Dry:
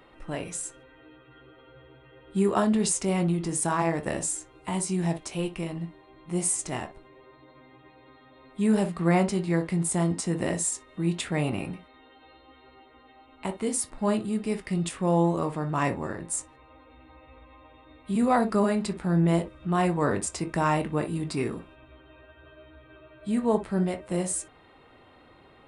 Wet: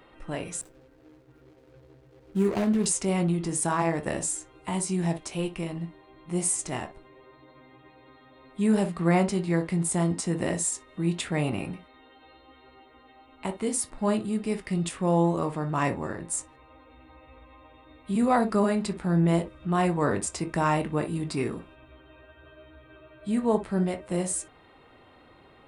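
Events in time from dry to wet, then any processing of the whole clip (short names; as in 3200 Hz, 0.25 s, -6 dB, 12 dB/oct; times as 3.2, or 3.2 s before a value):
0.61–2.86 median filter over 41 samples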